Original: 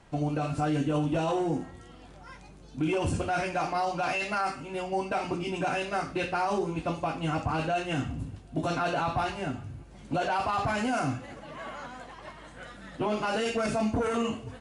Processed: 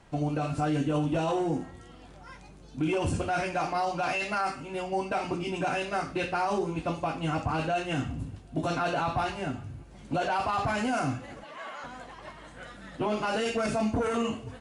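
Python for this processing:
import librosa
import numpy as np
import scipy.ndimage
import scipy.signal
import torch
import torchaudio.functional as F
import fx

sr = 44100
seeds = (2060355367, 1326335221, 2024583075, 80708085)

y = fx.weighting(x, sr, curve='A', at=(11.44, 11.84))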